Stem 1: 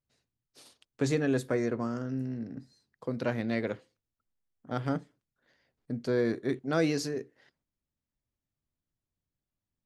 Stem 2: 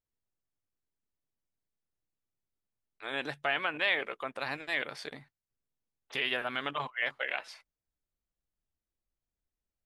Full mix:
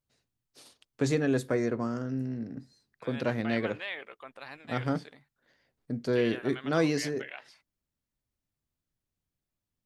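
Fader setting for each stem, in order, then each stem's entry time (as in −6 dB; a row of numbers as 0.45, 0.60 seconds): +1.0, −9.0 decibels; 0.00, 0.00 seconds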